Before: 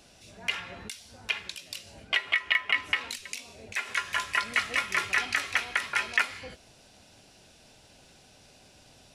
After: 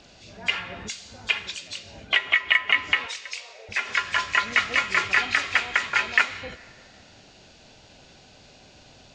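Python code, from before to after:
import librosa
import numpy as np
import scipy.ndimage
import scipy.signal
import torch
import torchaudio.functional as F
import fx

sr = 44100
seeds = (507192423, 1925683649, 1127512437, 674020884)

y = fx.freq_compress(x, sr, knee_hz=3200.0, ratio=1.5)
y = fx.high_shelf(y, sr, hz=8400.0, db=12.0, at=(0.88, 1.68))
y = fx.ellip_highpass(y, sr, hz=460.0, order=4, stop_db=40, at=(3.06, 3.69))
y = fx.rev_freeverb(y, sr, rt60_s=2.4, hf_ratio=0.65, predelay_ms=50, drr_db=19.5)
y = y * librosa.db_to_amplitude(5.5)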